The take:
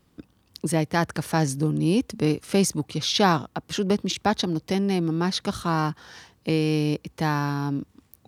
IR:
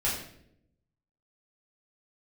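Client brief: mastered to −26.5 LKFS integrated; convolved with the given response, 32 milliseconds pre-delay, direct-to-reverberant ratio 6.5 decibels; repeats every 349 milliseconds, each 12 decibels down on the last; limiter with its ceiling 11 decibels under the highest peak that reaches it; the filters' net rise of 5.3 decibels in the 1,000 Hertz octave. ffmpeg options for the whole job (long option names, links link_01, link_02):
-filter_complex "[0:a]equalizer=frequency=1000:width_type=o:gain=6.5,alimiter=limit=-14dB:level=0:latency=1,aecho=1:1:349|698|1047:0.251|0.0628|0.0157,asplit=2[link_01][link_02];[1:a]atrim=start_sample=2205,adelay=32[link_03];[link_02][link_03]afir=irnorm=-1:irlink=0,volume=-15dB[link_04];[link_01][link_04]amix=inputs=2:normalize=0,volume=-1.5dB"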